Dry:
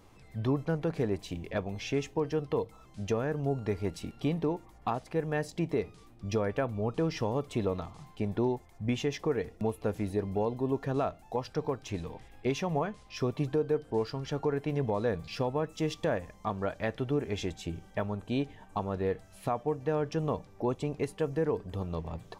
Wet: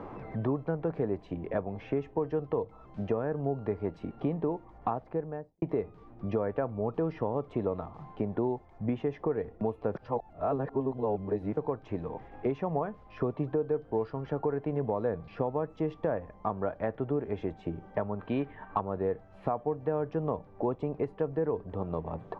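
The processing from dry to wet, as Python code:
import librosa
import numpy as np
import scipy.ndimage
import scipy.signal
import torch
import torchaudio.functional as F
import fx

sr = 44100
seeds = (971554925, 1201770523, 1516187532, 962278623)

y = fx.studio_fade_out(x, sr, start_s=4.88, length_s=0.74)
y = fx.band_shelf(y, sr, hz=2300.0, db=11.0, octaves=2.4, at=(18.19, 18.81))
y = fx.edit(y, sr, fx.reverse_span(start_s=9.95, length_s=1.62), tone=tone)
y = scipy.signal.sosfilt(scipy.signal.butter(2, 1100.0, 'lowpass', fs=sr, output='sos'), y)
y = fx.low_shelf(y, sr, hz=290.0, db=-7.0)
y = fx.band_squash(y, sr, depth_pct=70)
y = y * 10.0 ** (2.5 / 20.0)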